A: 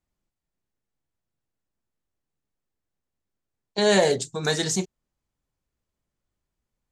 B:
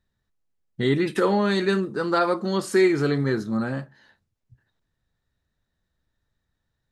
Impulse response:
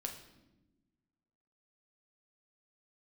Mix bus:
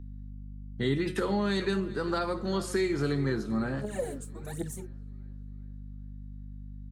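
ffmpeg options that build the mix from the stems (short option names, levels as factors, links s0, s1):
-filter_complex "[0:a]firequalizer=gain_entry='entry(2300,0);entry(4800,-17);entry(9600,8)':delay=0.05:min_phase=1,aphaser=in_gain=1:out_gain=1:delay=4.4:decay=0.79:speed=1.3:type=triangular,equalizer=f=2100:w=0.32:g=-10.5,volume=0.376[s0];[1:a]bandreject=f=183.3:t=h:w=4,bandreject=f=366.6:t=h:w=4,bandreject=f=549.9:t=h:w=4,bandreject=f=733.2:t=h:w=4,bandreject=f=916.5:t=h:w=4,bandreject=f=1099.8:t=h:w=4,bandreject=f=1283.1:t=h:w=4,bandreject=f=1466.4:t=h:w=4,bandreject=f=1649.7:t=h:w=4,bandreject=f=1833:t=h:w=4,bandreject=f=2016.3:t=h:w=4,bandreject=f=2199.6:t=h:w=4,bandreject=f=2382.9:t=h:w=4,bandreject=f=2566.2:t=h:w=4,bandreject=f=2749.5:t=h:w=4,bandreject=f=2932.8:t=h:w=4,bandreject=f=3116.1:t=h:w=4,bandreject=f=3299.4:t=h:w=4,bandreject=f=3482.7:t=h:w=4,bandreject=f=3666:t=h:w=4,bandreject=f=3849.3:t=h:w=4,bandreject=f=4032.6:t=h:w=4,bandreject=f=4215.9:t=h:w=4,bandreject=f=4399.2:t=h:w=4,bandreject=f=4582.5:t=h:w=4,bandreject=f=4765.8:t=h:w=4,bandreject=f=4949.1:t=h:w=4,bandreject=f=5132.4:t=h:w=4,bandreject=f=5315.7:t=h:w=4,bandreject=f=5499:t=h:w=4,bandreject=f=5682.3:t=h:w=4,bandreject=f=5865.6:t=h:w=4,bandreject=f=6048.9:t=h:w=4,bandreject=f=6232.2:t=h:w=4,bandreject=f=6415.5:t=h:w=4,aeval=exprs='val(0)+0.0158*(sin(2*PI*50*n/s)+sin(2*PI*2*50*n/s)/2+sin(2*PI*3*50*n/s)/3+sin(2*PI*4*50*n/s)/4+sin(2*PI*5*50*n/s)/5)':c=same,volume=0.596,asplit=3[s1][s2][s3];[s2]volume=0.1[s4];[s3]apad=whole_len=309408[s5];[s0][s5]sidechaincompress=threshold=0.00708:ratio=8:attack=16:release=310[s6];[s4]aecho=0:1:394|788|1182|1576|1970|2364|2758:1|0.5|0.25|0.125|0.0625|0.0312|0.0156[s7];[s6][s1][s7]amix=inputs=3:normalize=0,acrossover=split=240|3000[s8][s9][s10];[s9]acompressor=threshold=0.0398:ratio=6[s11];[s8][s11][s10]amix=inputs=3:normalize=0"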